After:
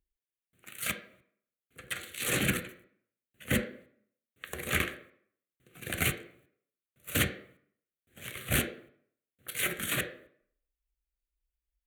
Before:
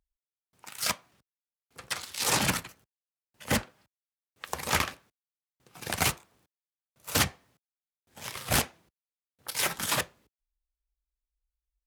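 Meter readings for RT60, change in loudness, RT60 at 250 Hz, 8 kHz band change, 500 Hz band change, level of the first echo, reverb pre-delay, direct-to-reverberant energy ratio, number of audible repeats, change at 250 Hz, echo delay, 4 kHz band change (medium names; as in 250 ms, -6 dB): 0.60 s, -3.0 dB, 0.60 s, -5.0 dB, -1.5 dB, no echo, 11 ms, 6.5 dB, no echo, +0.5 dB, no echo, -5.0 dB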